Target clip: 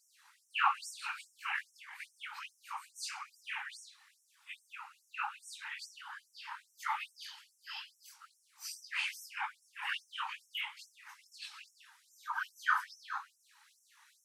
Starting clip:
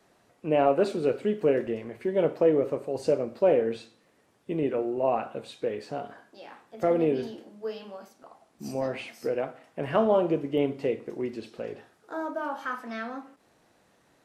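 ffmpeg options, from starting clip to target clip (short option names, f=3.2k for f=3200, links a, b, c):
-af "afftfilt=real='re':imag='-im':win_size=2048:overlap=0.75,afftfilt=real='hypot(re,im)*cos(2*PI*random(0))':imag='hypot(re,im)*sin(2*PI*random(1))':win_size=512:overlap=0.75,afftfilt=real='re*gte(b*sr/1024,770*pow(5500/770,0.5+0.5*sin(2*PI*2.4*pts/sr)))':imag='im*gte(b*sr/1024,770*pow(5500/770,0.5+0.5*sin(2*PI*2.4*pts/sr)))':win_size=1024:overlap=0.75,volume=15.5dB"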